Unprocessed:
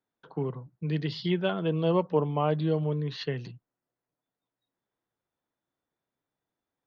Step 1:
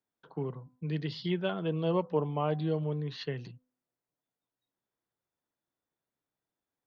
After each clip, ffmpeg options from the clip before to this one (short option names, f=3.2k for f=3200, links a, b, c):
-af "bandreject=f=252.6:t=h:w=4,bandreject=f=505.2:t=h:w=4,bandreject=f=757.8:t=h:w=4,bandreject=f=1.0104k:t=h:w=4,bandreject=f=1.263k:t=h:w=4,volume=-4dB"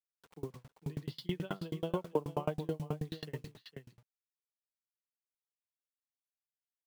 -filter_complex "[0:a]acrusher=bits=8:mix=0:aa=0.000001,asplit=2[a][b];[b]aecho=0:1:456:0.376[c];[a][c]amix=inputs=2:normalize=0,aeval=exprs='val(0)*pow(10,-32*if(lt(mod(9.3*n/s,1),2*abs(9.3)/1000),1-mod(9.3*n/s,1)/(2*abs(9.3)/1000),(mod(9.3*n/s,1)-2*abs(9.3)/1000)/(1-2*abs(9.3)/1000))/20)':c=same,volume=2dB"